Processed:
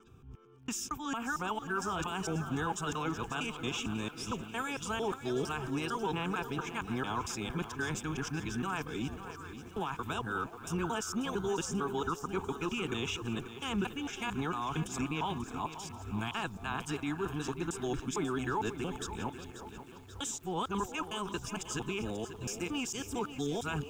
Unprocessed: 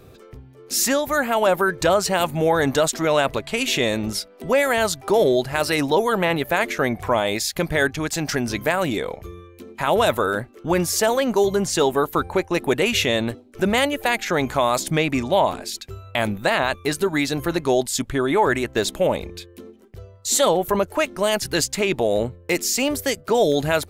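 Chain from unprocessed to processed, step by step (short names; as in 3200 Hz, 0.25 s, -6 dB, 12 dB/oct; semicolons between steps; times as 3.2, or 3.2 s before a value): local time reversal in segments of 0.227 s; fixed phaser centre 2900 Hz, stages 8; limiter -16 dBFS, peak gain reduction 6 dB; high shelf 3200 Hz -5 dB; delay with a stepping band-pass 0.356 s, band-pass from 550 Hz, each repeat 1.4 oct, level -9 dB; lo-fi delay 0.539 s, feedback 55%, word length 8-bit, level -11.5 dB; gain -8.5 dB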